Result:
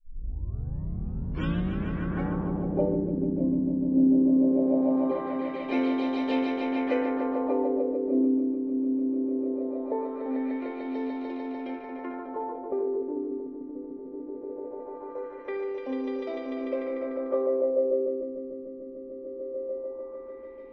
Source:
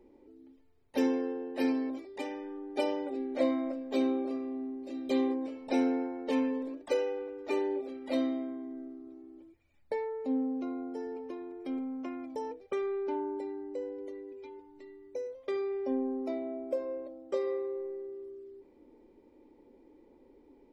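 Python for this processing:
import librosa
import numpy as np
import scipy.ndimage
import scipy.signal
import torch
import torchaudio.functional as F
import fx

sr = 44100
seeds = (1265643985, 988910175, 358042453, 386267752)

y = fx.tape_start_head(x, sr, length_s=2.35)
y = fx.echo_swell(y, sr, ms=148, loudest=5, wet_db=-5.5)
y = fx.filter_lfo_lowpass(y, sr, shape='sine', hz=0.2, low_hz=250.0, high_hz=3400.0, q=1.7)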